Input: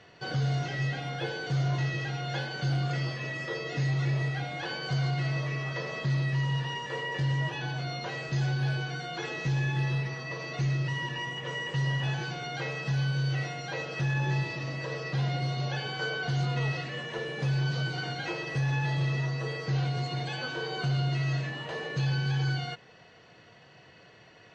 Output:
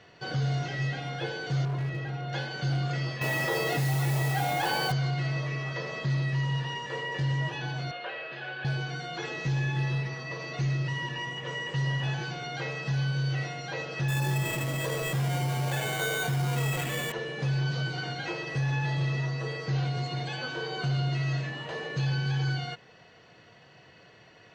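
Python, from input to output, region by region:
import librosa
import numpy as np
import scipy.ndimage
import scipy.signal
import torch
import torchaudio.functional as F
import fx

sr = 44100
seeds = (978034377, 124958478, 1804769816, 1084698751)

y = fx.chain(x, sr, fx.lowpass(hz=1400.0, slope=6),
    fx.clip_hard(threshold_db=-27.5), at=(1.65, 2.33))
y = fx.chain(y, sr, fx.peak_eq(hz=830.0, db=11.0, octaves=0.4),
    fx.mod_noise(seeds[0], snr_db=15),
    fx.env_flatten(amount_pct=70), at=(3.21, 4.92))
y = fx.chain(y, sr, fx.delta_mod(bps=64000, step_db=-43.0),
    fx.cabinet(low_hz=500.0, low_slope=12, high_hz=3300.0, hz=(560.0, 920.0, 1700.0, 2800.0), db=(4, -4, 6, 4)),
    fx.notch(hz=2000.0, q=9.2), at=(7.91, 8.65))
y = fx.chain(y, sr, fx.sample_hold(seeds[1], rate_hz=5200.0, jitter_pct=0),
    fx.env_flatten(amount_pct=50), at=(14.08, 17.12))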